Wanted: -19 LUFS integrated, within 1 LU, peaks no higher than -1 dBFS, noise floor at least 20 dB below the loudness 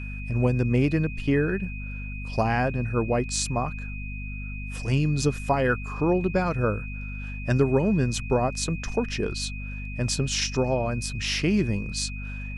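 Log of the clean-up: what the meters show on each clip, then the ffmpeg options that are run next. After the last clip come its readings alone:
hum 50 Hz; highest harmonic 250 Hz; hum level -32 dBFS; steady tone 2.5 kHz; tone level -39 dBFS; loudness -26.5 LUFS; peak level -8.5 dBFS; loudness target -19.0 LUFS
-> -af "bandreject=f=50:t=h:w=4,bandreject=f=100:t=h:w=4,bandreject=f=150:t=h:w=4,bandreject=f=200:t=h:w=4,bandreject=f=250:t=h:w=4"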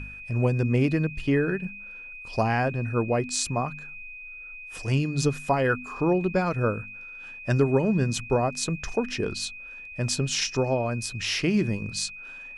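hum not found; steady tone 2.5 kHz; tone level -39 dBFS
-> -af "bandreject=f=2500:w=30"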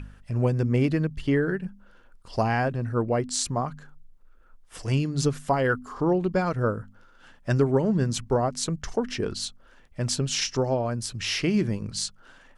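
steady tone not found; loudness -26.5 LUFS; peak level -9.5 dBFS; loudness target -19.0 LUFS
-> -af "volume=2.37"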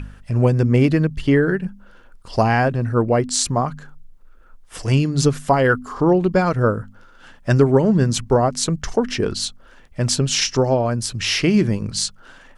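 loudness -19.0 LUFS; peak level -2.0 dBFS; noise floor -47 dBFS

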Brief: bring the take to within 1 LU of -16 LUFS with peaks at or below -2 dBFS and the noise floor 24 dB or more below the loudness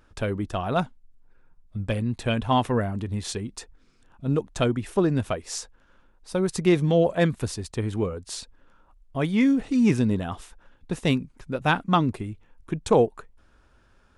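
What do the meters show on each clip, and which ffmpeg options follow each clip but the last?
loudness -25.5 LUFS; peak level -7.5 dBFS; loudness target -16.0 LUFS
-> -af "volume=2.99,alimiter=limit=0.794:level=0:latency=1"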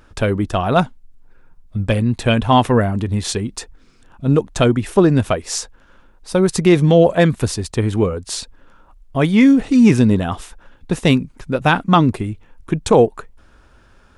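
loudness -16.5 LUFS; peak level -2.0 dBFS; noise floor -50 dBFS

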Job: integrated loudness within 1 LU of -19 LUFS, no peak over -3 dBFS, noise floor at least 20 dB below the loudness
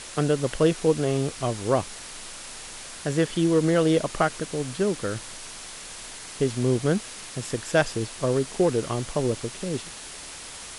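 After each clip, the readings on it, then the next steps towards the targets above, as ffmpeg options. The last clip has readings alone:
noise floor -40 dBFS; noise floor target -46 dBFS; loudness -25.5 LUFS; peak level -8.0 dBFS; loudness target -19.0 LUFS
-> -af "afftdn=nr=6:nf=-40"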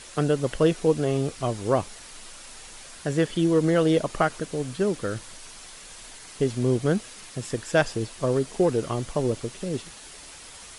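noise floor -45 dBFS; noise floor target -46 dBFS
-> -af "afftdn=nr=6:nf=-45"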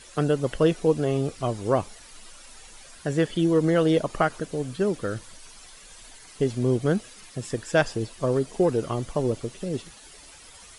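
noise floor -48 dBFS; loudness -25.5 LUFS; peak level -8.5 dBFS; loudness target -19.0 LUFS
-> -af "volume=2.11,alimiter=limit=0.708:level=0:latency=1"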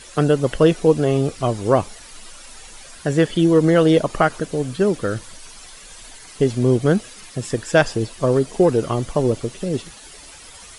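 loudness -19.0 LUFS; peak level -3.0 dBFS; noise floor -42 dBFS

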